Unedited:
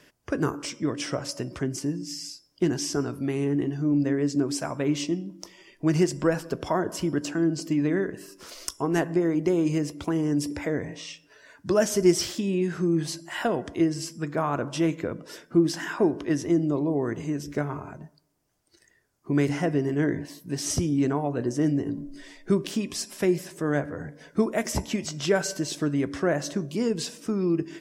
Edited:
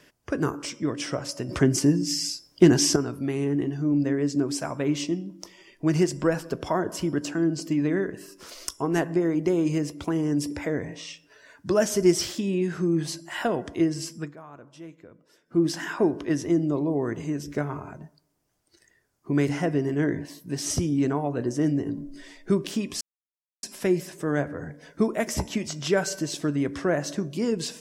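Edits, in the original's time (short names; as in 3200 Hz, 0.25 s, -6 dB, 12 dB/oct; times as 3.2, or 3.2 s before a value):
1.49–2.96 gain +8.5 dB
14.18–15.63 dip -18.5 dB, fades 0.18 s
23.01 insert silence 0.62 s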